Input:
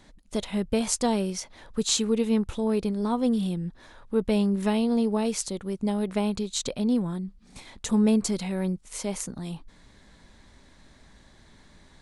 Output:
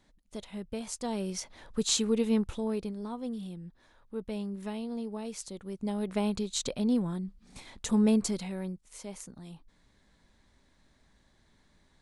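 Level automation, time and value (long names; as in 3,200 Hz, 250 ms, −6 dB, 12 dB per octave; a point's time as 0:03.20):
0:00.98 −12 dB
0:01.38 −3 dB
0:02.41 −3 dB
0:03.16 −12.5 dB
0:05.22 −12.5 dB
0:06.26 −3 dB
0:08.21 −3 dB
0:08.85 −11.5 dB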